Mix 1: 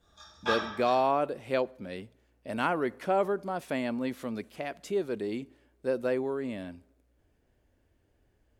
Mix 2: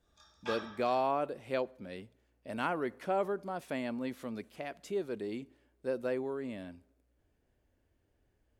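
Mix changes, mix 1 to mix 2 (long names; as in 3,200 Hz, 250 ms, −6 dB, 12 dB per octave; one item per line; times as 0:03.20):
speech −5.0 dB
background: send −10.5 dB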